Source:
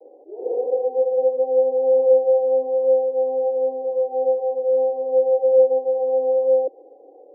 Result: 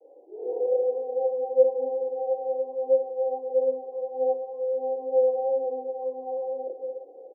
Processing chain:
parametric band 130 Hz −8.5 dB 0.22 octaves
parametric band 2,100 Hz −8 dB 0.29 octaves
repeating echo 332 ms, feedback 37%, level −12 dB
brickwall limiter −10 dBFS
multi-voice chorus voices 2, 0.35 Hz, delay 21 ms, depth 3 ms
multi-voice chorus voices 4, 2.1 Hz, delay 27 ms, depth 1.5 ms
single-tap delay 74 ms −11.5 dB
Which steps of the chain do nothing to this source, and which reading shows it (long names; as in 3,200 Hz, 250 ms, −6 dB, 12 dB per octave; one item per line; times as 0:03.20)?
parametric band 130 Hz: nothing at its input below 250 Hz
parametric band 2,100 Hz: nothing at its input above 810 Hz